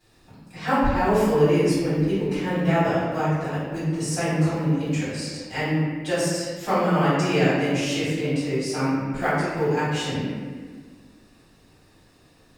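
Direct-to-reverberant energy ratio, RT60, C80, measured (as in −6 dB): −14.5 dB, 1.5 s, 0.5 dB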